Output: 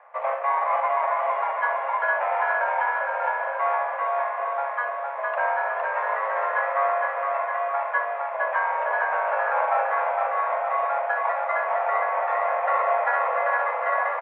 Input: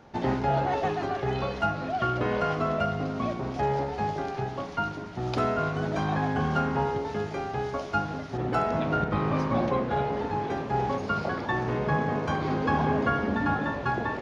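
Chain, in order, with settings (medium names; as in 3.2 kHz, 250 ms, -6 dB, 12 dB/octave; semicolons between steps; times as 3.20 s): in parallel at -5 dB: sample-and-hold 17×; on the sum: feedback delay 461 ms, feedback 59%, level -3 dB; mistuned SSB +280 Hz 300–2100 Hz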